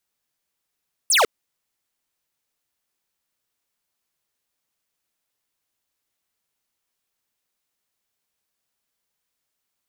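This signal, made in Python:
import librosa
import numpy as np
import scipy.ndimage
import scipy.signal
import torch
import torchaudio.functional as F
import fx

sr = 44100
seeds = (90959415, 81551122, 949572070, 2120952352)

y = fx.laser_zap(sr, level_db=-16.0, start_hz=11000.0, end_hz=380.0, length_s=0.15, wave='square')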